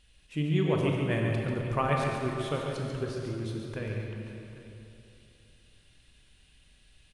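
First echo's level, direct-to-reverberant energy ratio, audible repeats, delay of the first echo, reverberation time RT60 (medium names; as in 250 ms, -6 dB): -6.0 dB, -1.0 dB, 3, 140 ms, 3.0 s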